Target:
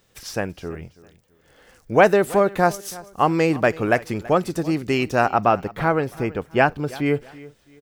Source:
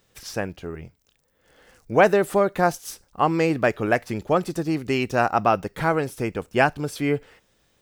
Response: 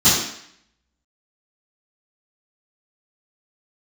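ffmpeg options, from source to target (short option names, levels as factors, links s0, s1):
-filter_complex "[0:a]asettb=1/sr,asplit=3[s0][s1][s2];[s0]atrim=end=5.274[s3];[s1]atrim=start=5.27:end=7.06,asetpts=PTS-STARTPTS,afade=t=in:d=0.004:c=qsin,afade=t=out:st=1.786:d=0.004:c=qsin,equalizer=f=8900:t=o:w=1.7:g=-10[s4];[s2]atrim=start=7.056[s5];[s3][s4]acrossfade=d=0.004:c1=hsin:c2=qsin[s6];[s6][s5]acrossfade=d=0.004:c1=qsin:c2=hsin,aecho=1:1:330|660:0.1|0.031,volume=1.26"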